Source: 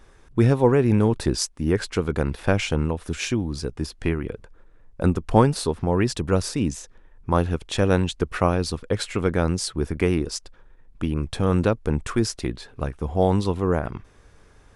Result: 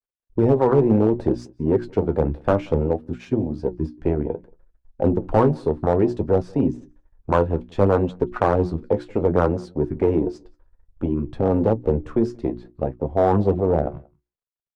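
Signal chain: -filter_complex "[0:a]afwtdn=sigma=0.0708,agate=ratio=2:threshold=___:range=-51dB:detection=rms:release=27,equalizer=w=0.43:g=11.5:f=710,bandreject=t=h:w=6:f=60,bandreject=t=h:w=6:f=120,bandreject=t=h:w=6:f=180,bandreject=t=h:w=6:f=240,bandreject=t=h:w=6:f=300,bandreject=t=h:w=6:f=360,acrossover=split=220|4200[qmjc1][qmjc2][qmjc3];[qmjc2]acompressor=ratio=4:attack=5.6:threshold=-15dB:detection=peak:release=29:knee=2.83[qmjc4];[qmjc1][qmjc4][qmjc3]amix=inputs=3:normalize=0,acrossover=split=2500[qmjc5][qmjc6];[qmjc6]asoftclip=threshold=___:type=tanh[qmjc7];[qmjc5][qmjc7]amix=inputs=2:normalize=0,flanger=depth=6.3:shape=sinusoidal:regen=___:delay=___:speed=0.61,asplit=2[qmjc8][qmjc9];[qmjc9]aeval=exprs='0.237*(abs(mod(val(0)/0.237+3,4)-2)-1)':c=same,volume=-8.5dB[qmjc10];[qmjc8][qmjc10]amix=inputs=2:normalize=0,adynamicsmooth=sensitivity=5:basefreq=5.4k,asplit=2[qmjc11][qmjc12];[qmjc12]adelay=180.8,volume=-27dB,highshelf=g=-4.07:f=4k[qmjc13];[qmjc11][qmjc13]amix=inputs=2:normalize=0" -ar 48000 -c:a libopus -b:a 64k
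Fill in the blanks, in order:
-47dB, -31.5dB, 48, 7.4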